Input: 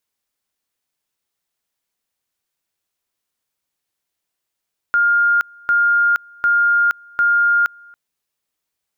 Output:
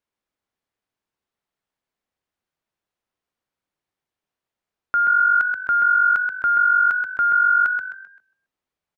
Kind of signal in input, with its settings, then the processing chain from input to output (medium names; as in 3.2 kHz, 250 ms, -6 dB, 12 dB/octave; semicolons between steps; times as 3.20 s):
two-level tone 1.41 kHz -11.5 dBFS, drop 28.5 dB, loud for 0.47 s, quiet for 0.28 s, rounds 4
low-pass 1.4 kHz 6 dB/octave; on a send: frequency-shifting echo 130 ms, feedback 35%, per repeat +47 Hz, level -5 dB